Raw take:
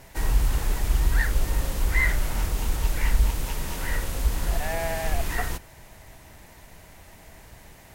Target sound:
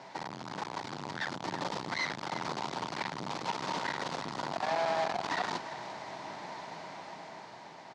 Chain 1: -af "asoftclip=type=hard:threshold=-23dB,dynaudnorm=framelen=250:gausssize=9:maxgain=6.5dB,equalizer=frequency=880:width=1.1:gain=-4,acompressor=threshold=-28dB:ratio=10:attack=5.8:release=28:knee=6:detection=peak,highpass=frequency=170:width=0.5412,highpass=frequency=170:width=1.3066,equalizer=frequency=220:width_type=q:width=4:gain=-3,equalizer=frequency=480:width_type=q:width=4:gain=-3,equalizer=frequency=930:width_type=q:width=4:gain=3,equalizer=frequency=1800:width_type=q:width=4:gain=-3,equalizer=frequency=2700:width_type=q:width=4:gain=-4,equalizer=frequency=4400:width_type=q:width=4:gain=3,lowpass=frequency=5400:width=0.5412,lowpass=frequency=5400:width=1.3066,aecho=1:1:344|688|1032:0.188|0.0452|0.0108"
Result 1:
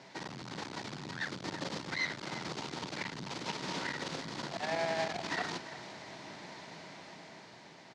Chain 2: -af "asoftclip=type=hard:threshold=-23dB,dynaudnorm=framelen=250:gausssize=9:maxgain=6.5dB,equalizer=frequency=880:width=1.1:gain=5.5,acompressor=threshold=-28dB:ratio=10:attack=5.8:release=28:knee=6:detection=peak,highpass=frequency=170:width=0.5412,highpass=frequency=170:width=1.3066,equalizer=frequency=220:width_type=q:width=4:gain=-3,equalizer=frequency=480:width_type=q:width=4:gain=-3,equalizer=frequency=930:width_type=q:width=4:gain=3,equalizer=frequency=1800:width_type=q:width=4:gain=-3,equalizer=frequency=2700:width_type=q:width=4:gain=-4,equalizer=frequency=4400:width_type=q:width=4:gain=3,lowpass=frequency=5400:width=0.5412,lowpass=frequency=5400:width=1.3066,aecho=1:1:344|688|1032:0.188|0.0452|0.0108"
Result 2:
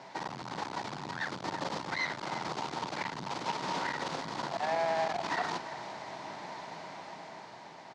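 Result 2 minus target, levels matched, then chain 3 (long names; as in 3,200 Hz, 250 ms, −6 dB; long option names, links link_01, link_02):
hard clipping: distortion −4 dB
-af "asoftclip=type=hard:threshold=-30.5dB,dynaudnorm=framelen=250:gausssize=9:maxgain=6.5dB,equalizer=frequency=880:width=1.1:gain=5.5,acompressor=threshold=-28dB:ratio=10:attack=5.8:release=28:knee=6:detection=peak,highpass=frequency=170:width=0.5412,highpass=frequency=170:width=1.3066,equalizer=frequency=220:width_type=q:width=4:gain=-3,equalizer=frequency=480:width_type=q:width=4:gain=-3,equalizer=frequency=930:width_type=q:width=4:gain=3,equalizer=frequency=1800:width_type=q:width=4:gain=-3,equalizer=frequency=2700:width_type=q:width=4:gain=-4,equalizer=frequency=4400:width_type=q:width=4:gain=3,lowpass=frequency=5400:width=0.5412,lowpass=frequency=5400:width=1.3066,aecho=1:1:344|688|1032:0.188|0.0452|0.0108"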